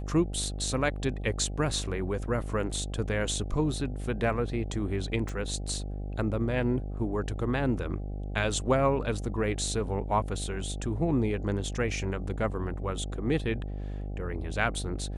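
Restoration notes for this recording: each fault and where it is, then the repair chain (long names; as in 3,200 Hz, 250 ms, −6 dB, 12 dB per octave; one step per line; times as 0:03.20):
mains buzz 50 Hz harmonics 16 −35 dBFS
0:05.29: click −23 dBFS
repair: click removal
hum removal 50 Hz, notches 16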